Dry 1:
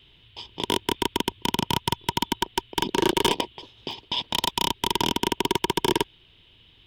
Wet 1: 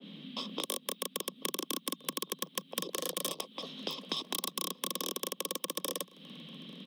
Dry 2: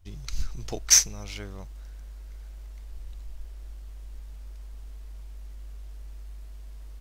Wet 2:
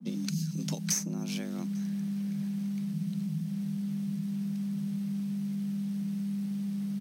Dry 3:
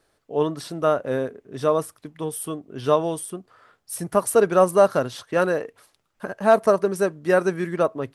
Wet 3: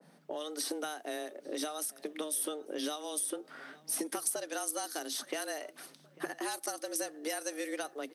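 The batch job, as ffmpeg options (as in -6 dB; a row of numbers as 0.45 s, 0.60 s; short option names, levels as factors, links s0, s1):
-filter_complex "[0:a]acrossover=split=4000[s0][s1];[s0]acompressor=threshold=0.0178:ratio=6[s2];[s1]bandreject=f=7000:w=9.7[s3];[s2][s3]amix=inputs=2:normalize=0,acrossover=split=1400|7300[s4][s5][s6];[s4]acompressor=threshold=0.00708:ratio=4[s7];[s5]acompressor=threshold=0.00501:ratio=4[s8];[s6]acompressor=threshold=0.00631:ratio=4[s9];[s7][s8][s9]amix=inputs=3:normalize=0,lowshelf=f=240:g=10.5,asplit=2[s10][s11];[s11]adelay=846,lowpass=f=2500:p=1,volume=0.0891,asplit=2[s12][s13];[s13]adelay=846,lowpass=f=2500:p=1,volume=0.53,asplit=2[s14][s15];[s15]adelay=846,lowpass=f=2500:p=1,volume=0.53,asplit=2[s16][s17];[s17]adelay=846,lowpass=f=2500:p=1,volume=0.53[s18];[s10][s12][s14][s16][s18]amix=inputs=5:normalize=0,afreqshift=150,adynamicequalizer=threshold=0.00141:dfrequency=1500:dqfactor=0.7:tfrequency=1500:tqfactor=0.7:attack=5:release=100:ratio=0.375:range=2.5:mode=boostabove:tftype=highshelf,volume=1.26"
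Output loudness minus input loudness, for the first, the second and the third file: -11.0 LU, -9.5 LU, -14.5 LU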